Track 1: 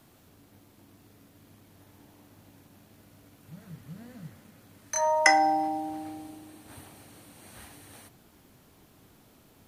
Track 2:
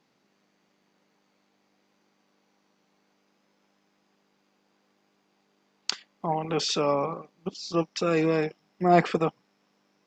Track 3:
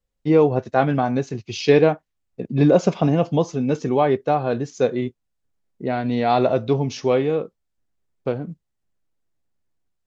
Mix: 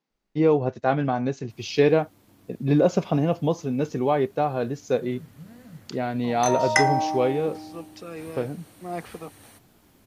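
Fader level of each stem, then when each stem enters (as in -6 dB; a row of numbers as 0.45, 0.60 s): 0.0, -13.5, -4.0 dB; 1.50, 0.00, 0.10 s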